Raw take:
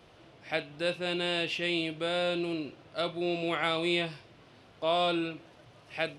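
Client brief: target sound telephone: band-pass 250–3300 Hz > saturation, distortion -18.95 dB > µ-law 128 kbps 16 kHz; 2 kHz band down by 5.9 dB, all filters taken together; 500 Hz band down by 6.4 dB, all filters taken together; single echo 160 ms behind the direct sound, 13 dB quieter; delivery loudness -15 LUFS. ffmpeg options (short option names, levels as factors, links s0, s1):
-af "highpass=250,lowpass=3300,equalizer=f=500:t=o:g=-8,equalizer=f=2000:t=o:g=-6.5,aecho=1:1:160:0.224,asoftclip=threshold=0.0562,volume=13.3" -ar 16000 -c:a pcm_mulaw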